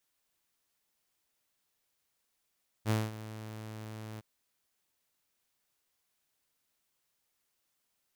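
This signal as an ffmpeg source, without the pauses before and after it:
-f lavfi -i "aevalsrc='0.0708*(2*mod(109*t,1)-1)':d=1.363:s=44100,afade=t=in:d=0.052,afade=t=out:st=0.052:d=0.207:silence=0.158,afade=t=out:st=1.34:d=0.023"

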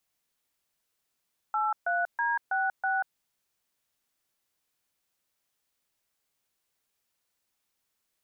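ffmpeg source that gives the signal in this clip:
-f lavfi -i "aevalsrc='0.0422*clip(min(mod(t,0.324),0.188-mod(t,0.324))/0.002,0,1)*(eq(floor(t/0.324),0)*(sin(2*PI*852*mod(t,0.324))+sin(2*PI*1336*mod(t,0.324)))+eq(floor(t/0.324),1)*(sin(2*PI*697*mod(t,0.324))+sin(2*PI*1477*mod(t,0.324)))+eq(floor(t/0.324),2)*(sin(2*PI*941*mod(t,0.324))+sin(2*PI*1633*mod(t,0.324)))+eq(floor(t/0.324),3)*(sin(2*PI*770*mod(t,0.324))+sin(2*PI*1477*mod(t,0.324)))+eq(floor(t/0.324),4)*(sin(2*PI*770*mod(t,0.324))+sin(2*PI*1477*mod(t,0.324))))':d=1.62:s=44100"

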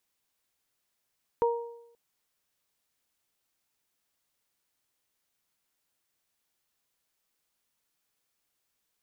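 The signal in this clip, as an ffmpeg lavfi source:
-f lavfi -i "aevalsrc='0.0891*pow(10,-3*t/0.81)*sin(2*PI*469*t)+0.0596*pow(10,-3*t/0.63)*sin(2*PI*938*t)':d=0.53:s=44100"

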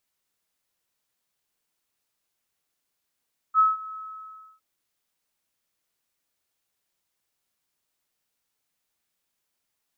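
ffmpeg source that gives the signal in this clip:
-f lavfi -i "aevalsrc='0.211*sin(2*PI*1290*t)':d=1.06:s=44100,afade=t=in:d=0.051,afade=t=out:st=0.051:d=0.176:silence=0.0944,afade=t=out:st=0.41:d=0.65"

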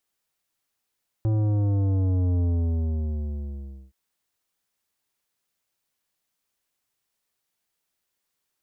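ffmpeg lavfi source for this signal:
-f lavfi -i "aevalsrc='0.0891*clip((2.67-t)/1.51,0,1)*tanh(3.76*sin(2*PI*110*2.67/log(65/110)*(exp(log(65/110)*t/2.67)-1)))/tanh(3.76)':d=2.67:s=44100"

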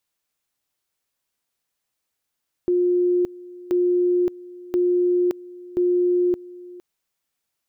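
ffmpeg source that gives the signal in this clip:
-f lavfi -i "aevalsrc='pow(10,(-16-20.5*gte(mod(t,1.03),0.57))/20)*sin(2*PI*356*t)':d=4.12:s=44100"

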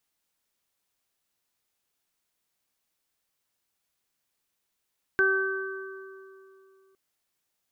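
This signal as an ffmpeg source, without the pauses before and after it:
-f lavfi -i "aevalsrc='0.0631*pow(10,-3*t/2.84)*sin(2*PI*385*t)+0.0075*pow(10,-3*t/1.04)*sin(2*PI*770*t)+0.0224*pow(10,-3*t/2.69)*sin(2*PI*1155*t)+0.112*pow(10,-3*t/1.79)*sin(2*PI*1540*t)':d=1.76:s=44100"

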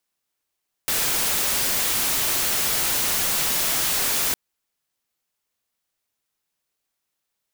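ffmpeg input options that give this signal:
-f lavfi -i "anoisesrc=c=white:a=0.13:d=3.46:r=44100:seed=1"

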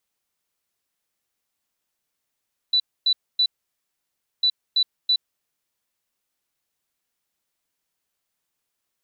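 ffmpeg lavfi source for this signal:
-f lavfi -i "aevalsrc='0.168*sin(2*PI*3970*t)*clip(min(mod(mod(t,1.7),0.33),0.07-mod(mod(t,1.7),0.33))/0.005,0,1)*lt(mod(t,1.7),0.99)':d=3.4:s=44100"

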